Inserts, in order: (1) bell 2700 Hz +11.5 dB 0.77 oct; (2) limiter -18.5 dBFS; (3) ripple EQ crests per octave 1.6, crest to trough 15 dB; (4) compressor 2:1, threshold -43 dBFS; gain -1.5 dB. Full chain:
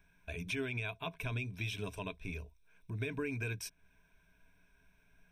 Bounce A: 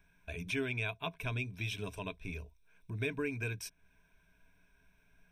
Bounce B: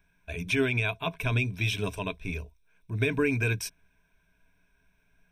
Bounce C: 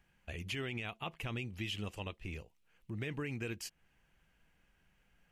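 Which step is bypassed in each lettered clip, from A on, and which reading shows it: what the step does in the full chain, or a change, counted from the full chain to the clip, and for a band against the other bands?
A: 2, momentary loudness spread change +2 LU; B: 4, mean gain reduction 9.0 dB; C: 3, 4 kHz band +4.0 dB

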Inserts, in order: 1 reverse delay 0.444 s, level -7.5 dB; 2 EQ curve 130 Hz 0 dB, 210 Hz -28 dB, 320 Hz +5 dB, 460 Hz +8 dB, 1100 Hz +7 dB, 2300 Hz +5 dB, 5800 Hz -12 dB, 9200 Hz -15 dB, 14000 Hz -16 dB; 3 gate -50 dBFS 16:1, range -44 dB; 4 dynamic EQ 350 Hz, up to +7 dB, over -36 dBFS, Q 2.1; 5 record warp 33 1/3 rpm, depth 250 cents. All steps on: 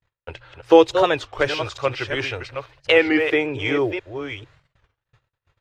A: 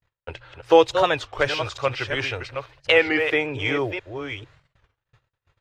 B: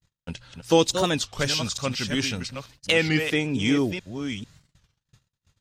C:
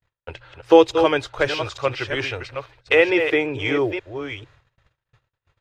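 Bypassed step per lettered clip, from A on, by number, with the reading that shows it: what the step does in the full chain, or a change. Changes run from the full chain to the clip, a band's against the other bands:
4, 250 Hz band -5.5 dB; 2, 125 Hz band +9.0 dB; 5, momentary loudness spread change +2 LU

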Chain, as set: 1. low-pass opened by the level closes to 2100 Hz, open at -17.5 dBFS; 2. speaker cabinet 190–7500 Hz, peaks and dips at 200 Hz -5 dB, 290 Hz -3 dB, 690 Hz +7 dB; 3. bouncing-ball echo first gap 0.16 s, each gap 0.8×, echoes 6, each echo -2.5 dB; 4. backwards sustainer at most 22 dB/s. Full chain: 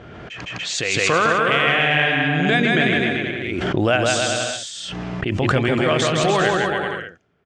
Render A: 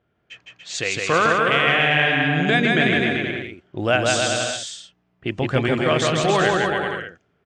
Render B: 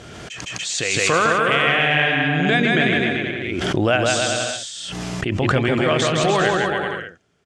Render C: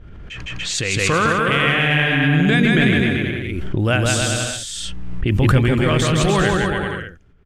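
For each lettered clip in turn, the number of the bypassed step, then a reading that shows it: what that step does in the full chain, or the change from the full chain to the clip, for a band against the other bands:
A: 4, momentary loudness spread change +2 LU; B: 1, 8 kHz band +2.0 dB; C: 2, crest factor change -2.0 dB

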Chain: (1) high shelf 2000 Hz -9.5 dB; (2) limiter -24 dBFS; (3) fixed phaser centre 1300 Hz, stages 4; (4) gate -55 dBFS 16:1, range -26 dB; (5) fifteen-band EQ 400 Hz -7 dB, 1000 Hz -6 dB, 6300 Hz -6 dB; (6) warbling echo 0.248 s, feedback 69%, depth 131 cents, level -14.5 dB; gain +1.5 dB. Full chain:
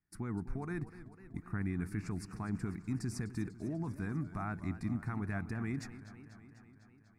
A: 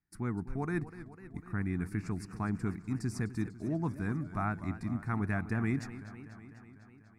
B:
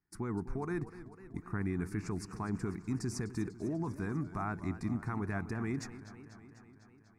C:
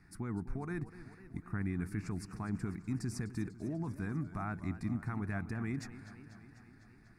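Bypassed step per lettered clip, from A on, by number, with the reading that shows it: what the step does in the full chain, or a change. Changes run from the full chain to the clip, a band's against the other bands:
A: 2, mean gain reduction 2.0 dB; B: 5, 125 Hz band -3.5 dB; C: 4, momentary loudness spread change +2 LU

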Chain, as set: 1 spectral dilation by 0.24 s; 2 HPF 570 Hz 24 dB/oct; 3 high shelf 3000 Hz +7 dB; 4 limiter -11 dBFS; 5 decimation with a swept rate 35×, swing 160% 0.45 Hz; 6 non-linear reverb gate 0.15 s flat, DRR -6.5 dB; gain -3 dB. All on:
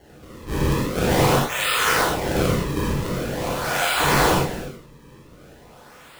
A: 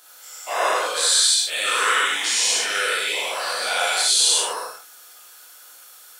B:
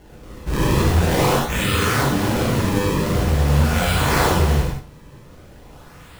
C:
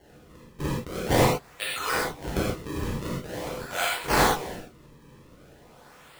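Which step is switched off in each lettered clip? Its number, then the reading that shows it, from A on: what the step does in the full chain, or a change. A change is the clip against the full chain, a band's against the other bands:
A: 5, 250 Hz band -23.5 dB; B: 2, 125 Hz band +6.5 dB; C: 1, crest factor change +4.0 dB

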